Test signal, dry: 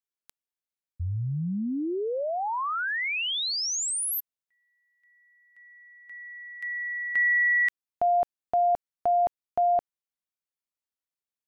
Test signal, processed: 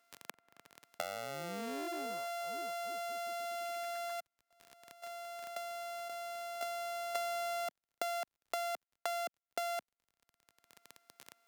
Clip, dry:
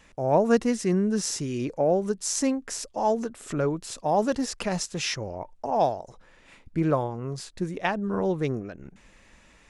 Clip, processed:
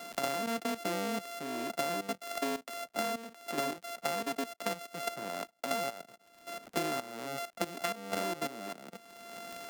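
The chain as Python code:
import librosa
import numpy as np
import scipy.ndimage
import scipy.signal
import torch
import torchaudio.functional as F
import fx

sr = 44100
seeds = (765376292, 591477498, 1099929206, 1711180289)

y = np.r_[np.sort(x[:len(x) // 64 * 64].reshape(-1, 64), axis=1).ravel(), x[len(x) // 64 * 64:]]
y = scipy.signal.sosfilt(scipy.signal.butter(4, 210.0, 'highpass', fs=sr, output='sos'), y)
y = fx.level_steps(y, sr, step_db=14)
y = fx.dmg_crackle(y, sr, seeds[0], per_s=23.0, level_db=-55.0)
y = fx.band_squash(y, sr, depth_pct=100)
y = y * librosa.db_to_amplitude(-5.0)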